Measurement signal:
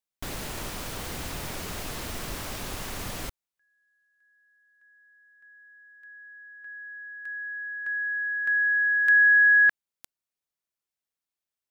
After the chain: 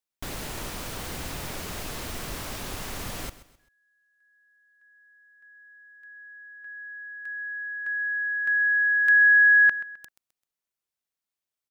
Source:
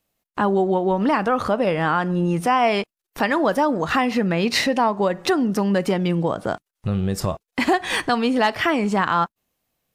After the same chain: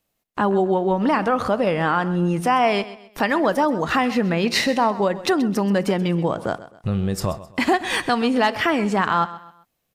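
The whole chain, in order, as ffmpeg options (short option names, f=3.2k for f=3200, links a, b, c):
-af "aecho=1:1:130|260|390:0.158|0.0555|0.0194"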